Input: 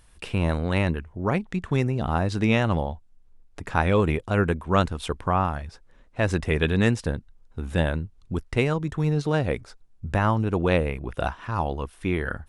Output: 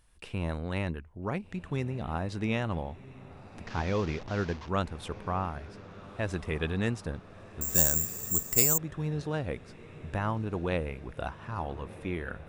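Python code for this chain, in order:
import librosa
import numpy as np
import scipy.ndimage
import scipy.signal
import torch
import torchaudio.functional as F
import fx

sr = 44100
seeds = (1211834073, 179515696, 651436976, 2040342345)

p1 = fx.delta_mod(x, sr, bps=32000, step_db=-29.0, at=(3.66, 4.69))
p2 = p1 + fx.echo_diffused(p1, sr, ms=1364, feedback_pct=59, wet_db=-16, dry=0)
p3 = fx.resample_bad(p2, sr, factor=6, down='none', up='zero_stuff', at=(7.61, 8.78))
y = F.gain(torch.from_numpy(p3), -9.0).numpy()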